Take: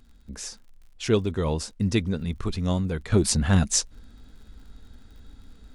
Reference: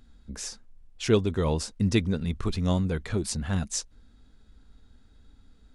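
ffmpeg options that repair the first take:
ffmpeg -i in.wav -af "adeclick=threshold=4,asetnsamples=nb_out_samples=441:pad=0,asendcmd='3.12 volume volume -8dB',volume=0dB" out.wav

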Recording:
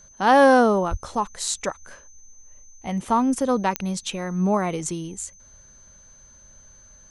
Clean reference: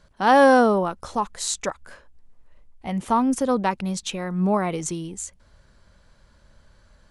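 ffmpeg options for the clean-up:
ffmpeg -i in.wav -filter_complex "[0:a]adeclick=threshold=4,bandreject=frequency=6200:width=30,asplit=3[link_01][link_02][link_03];[link_01]afade=type=out:start_time=0.9:duration=0.02[link_04];[link_02]highpass=frequency=140:width=0.5412,highpass=frequency=140:width=1.3066,afade=type=in:start_time=0.9:duration=0.02,afade=type=out:start_time=1.02:duration=0.02[link_05];[link_03]afade=type=in:start_time=1.02:duration=0.02[link_06];[link_04][link_05][link_06]amix=inputs=3:normalize=0" out.wav

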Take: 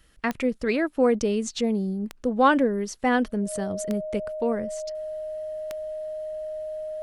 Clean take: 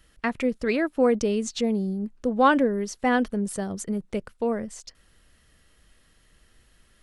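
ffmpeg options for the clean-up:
ffmpeg -i in.wav -af "adeclick=threshold=4,bandreject=frequency=620:width=30" out.wav

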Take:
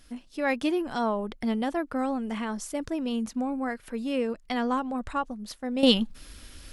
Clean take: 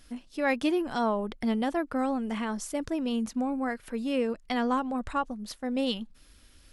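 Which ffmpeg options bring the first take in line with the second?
ffmpeg -i in.wav -af "asetnsamples=nb_out_samples=441:pad=0,asendcmd='5.83 volume volume -10.5dB',volume=0dB" out.wav

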